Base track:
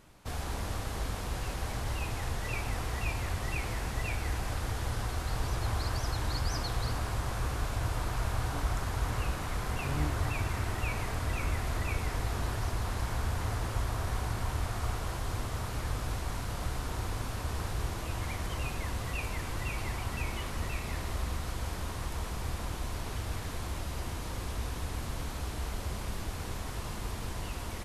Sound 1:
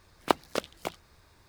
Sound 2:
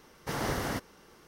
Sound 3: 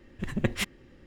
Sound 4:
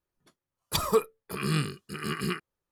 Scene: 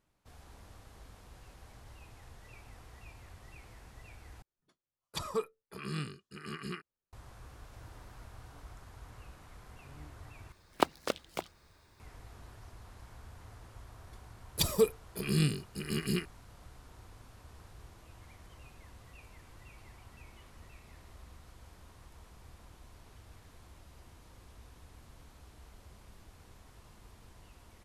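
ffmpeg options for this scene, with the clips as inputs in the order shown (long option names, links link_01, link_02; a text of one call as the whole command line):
ffmpeg -i bed.wav -i cue0.wav -i cue1.wav -i cue2.wav -i cue3.wav -filter_complex "[4:a]asplit=2[link_01][link_02];[0:a]volume=-19dB[link_03];[link_01]lowpass=9000[link_04];[2:a]acompressor=threshold=-47dB:ratio=6:attack=3.2:release=140:knee=1:detection=peak[link_05];[link_02]equalizer=frequency=1200:width=1.2:gain=-14[link_06];[link_03]asplit=3[link_07][link_08][link_09];[link_07]atrim=end=4.424[link_10];[link_04]atrim=end=2.71,asetpts=PTS-STARTPTS,volume=-10dB[link_11];[link_08]atrim=start=7.126:end=10.524[link_12];[1:a]atrim=end=1.48,asetpts=PTS-STARTPTS,volume=-3dB[link_13];[link_09]atrim=start=11.996[link_14];[link_05]atrim=end=1.27,asetpts=PTS-STARTPTS,volume=-13.5dB,afade=type=in:duration=0.004:curve=hsin,afade=type=out:start_time=1.266:duration=0.004:curve=hsin,adelay=7470[link_15];[link_06]atrim=end=2.71,asetpts=PTS-STARTPTS,afade=type=in:duration=0.004:curve=hsin,afade=type=out:start_time=2.706:duration=0.004:curve=hsin,adelay=13860[link_16];[link_10][link_11]acrossfade=duration=0.004:curve1=hsin:curve2=hsin[link_17];[link_17][link_12]acrossfade=duration=0.004:curve1=hsin:curve2=hsin[link_18];[link_18][link_13]acrossfade=duration=0.004:curve1=hsin:curve2=hsin[link_19];[link_19][link_14]acrossfade=duration=0.004:curve1=hsin:curve2=hsin[link_20];[link_20][link_15][link_16]amix=inputs=3:normalize=0" out.wav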